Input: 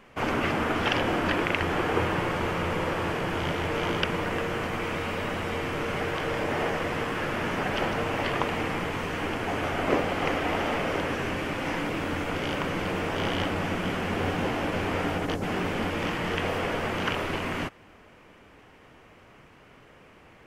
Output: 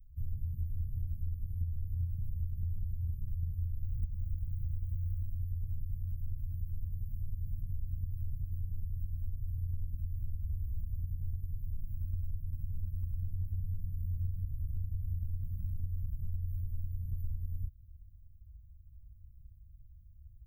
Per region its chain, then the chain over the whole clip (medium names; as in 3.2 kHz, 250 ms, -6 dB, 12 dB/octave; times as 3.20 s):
3.84–5.23 s: comb filter that takes the minimum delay 0.37 ms + tone controls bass +4 dB, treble -2 dB
whole clip: inverse Chebyshev band-stop 420–5500 Hz, stop band 80 dB; compression, threshold -43 dBFS; trim +12.5 dB